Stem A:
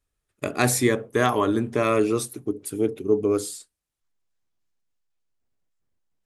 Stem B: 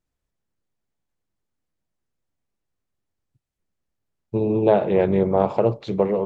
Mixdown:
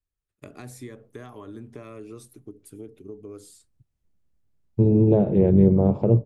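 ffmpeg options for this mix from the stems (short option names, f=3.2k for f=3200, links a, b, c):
-filter_complex "[0:a]acompressor=threshold=-25dB:ratio=4,volume=-14dB[a];[1:a]lowshelf=f=410:g=6.5,adelay=450,volume=-3dB[b];[a][b]amix=inputs=2:normalize=0,lowshelf=f=200:g=8,acrossover=split=480[c][d];[d]acompressor=threshold=-45dB:ratio=2[e];[c][e]amix=inputs=2:normalize=0"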